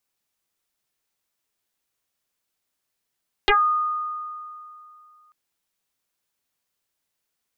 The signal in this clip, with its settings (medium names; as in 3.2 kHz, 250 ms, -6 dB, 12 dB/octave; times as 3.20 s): FM tone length 1.84 s, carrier 1.23 kHz, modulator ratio 0.33, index 7.4, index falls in 0.18 s exponential, decay 2.65 s, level -13 dB